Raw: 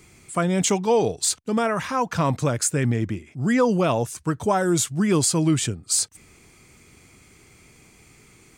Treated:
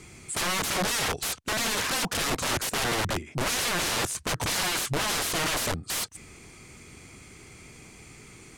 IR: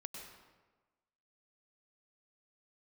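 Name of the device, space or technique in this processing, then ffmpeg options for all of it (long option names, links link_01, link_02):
overflowing digital effects unit: -af "aeval=exprs='(mod(20*val(0)+1,2)-1)/20':channel_layout=same,lowpass=12000,volume=4dB"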